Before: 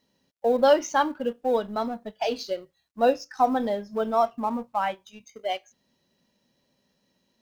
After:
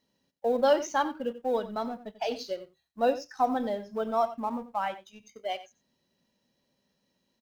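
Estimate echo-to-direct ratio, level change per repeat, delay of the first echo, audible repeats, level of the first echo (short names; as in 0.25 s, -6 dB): -14.5 dB, no steady repeat, 90 ms, 1, -14.5 dB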